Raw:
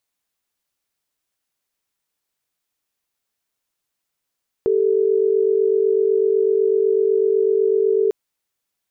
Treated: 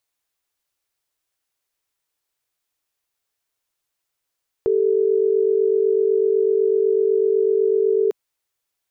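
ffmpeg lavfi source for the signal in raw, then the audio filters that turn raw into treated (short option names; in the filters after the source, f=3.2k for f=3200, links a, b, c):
-f lavfi -i "aevalsrc='0.141*(sin(2*PI*392*t)+sin(2*PI*440*t))':d=3.45:s=44100"
-af "equalizer=f=210:w=3.6:g=-14.5"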